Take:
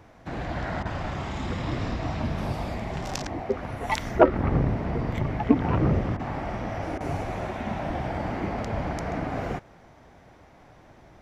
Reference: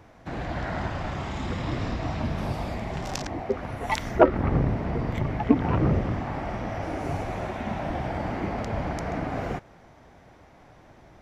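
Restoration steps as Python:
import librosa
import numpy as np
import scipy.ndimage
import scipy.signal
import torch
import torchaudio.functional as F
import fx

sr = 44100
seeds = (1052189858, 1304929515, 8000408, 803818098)

y = fx.fix_interpolate(x, sr, at_s=(0.83, 6.17, 6.98), length_ms=23.0)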